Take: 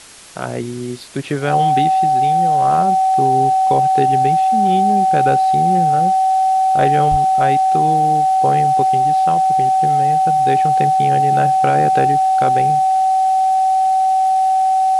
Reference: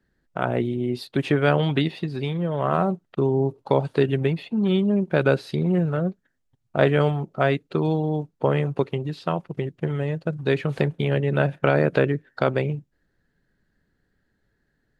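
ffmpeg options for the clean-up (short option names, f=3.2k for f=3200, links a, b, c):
-filter_complex "[0:a]bandreject=f=760:w=30,asplit=3[a][b][c];[a]afade=t=out:st=7.1:d=0.02[d];[b]highpass=f=140:w=0.5412,highpass=f=140:w=1.3066,afade=t=in:st=7.1:d=0.02,afade=t=out:st=7.22:d=0.02[e];[c]afade=t=in:st=7.22:d=0.02[f];[d][e][f]amix=inputs=3:normalize=0,afwtdn=0.013"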